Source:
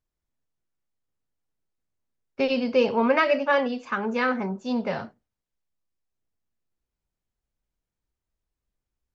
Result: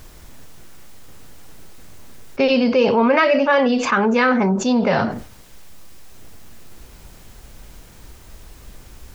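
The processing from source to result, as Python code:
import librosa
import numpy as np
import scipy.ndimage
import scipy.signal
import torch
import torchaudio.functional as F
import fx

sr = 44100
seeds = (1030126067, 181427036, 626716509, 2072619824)

y = fx.env_flatten(x, sr, amount_pct=70)
y = y * librosa.db_to_amplitude(3.0)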